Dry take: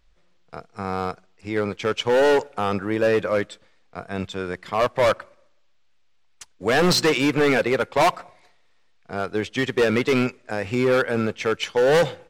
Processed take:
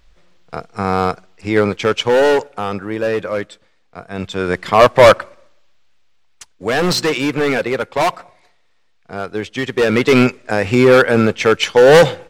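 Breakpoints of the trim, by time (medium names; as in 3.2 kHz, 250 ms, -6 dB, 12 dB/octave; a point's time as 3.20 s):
1.59 s +10 dB
2.73 s +1 dB
4.09 s +1 dB
4.54 s +12 dB
5.06 s +12 dB
6.77 s +2 dB
9.65 s +2 dB
10.22 s +10 dB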